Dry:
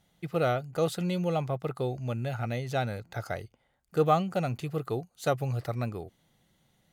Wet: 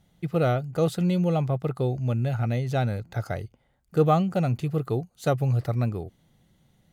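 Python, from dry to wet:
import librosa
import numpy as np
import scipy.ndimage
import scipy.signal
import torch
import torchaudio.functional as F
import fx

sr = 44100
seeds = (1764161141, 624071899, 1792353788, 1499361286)

y = fx.low_shelf(x, sr, hz=350.0, db=9.0)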